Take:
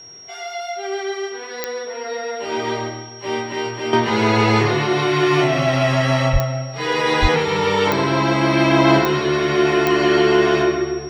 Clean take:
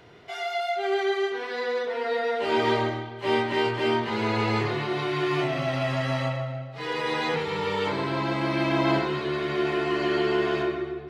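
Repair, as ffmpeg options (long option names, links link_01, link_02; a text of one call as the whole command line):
ffmpeg -i in.wav -filter_complex "[0:a]adeclick=threshold=4,bandreject=frequency=5600:width=30,asplit=3[link_01][link_02][link_03];[link_01]afade=type=out:start_time=6.32:duration=0.02[link_04];[link_02]highpass=frequency=140:width=0.5412,highpass=frequency=140:width=1.3066,afade=type=in:start_time=6.32:duration=0.02,afade=type=out:start_time=6.44:duration=0.02[link_05];[link_03]afade=type=in:start_time=6.44:duration=0.02[link_06];[link_04][link_05][link_06]amix=inputs=3:normalize=0,asplit=3[link_07][link_08][link_09];[link_07]afade=type=out:start_time=7.21:duration=0.02[link_10];[link_08]highpass=frequency=140:width=0.5412,highpass=frequency=140:width=1.3066,afade=type=in:start_time=7.21:duration=0.02,afade=type=out:start_time=7.33:duration=0.02[link_11];[link_09]afade=type=in:start_time=7.33:duration=0.02[link_12];[link_10][link_11][link_12]amix=inputs=3:normalize=0,asetnsamples=nb_out_samples=441:pad=0,asendcmd='3.93 volume volume -9.5dB',volume=0dB" out.wav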